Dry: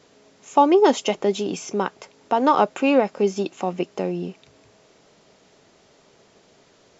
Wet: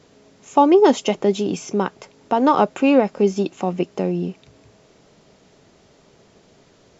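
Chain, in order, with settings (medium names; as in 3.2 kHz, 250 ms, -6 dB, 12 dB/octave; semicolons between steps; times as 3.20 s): bass shelf 260 Hz +9 dB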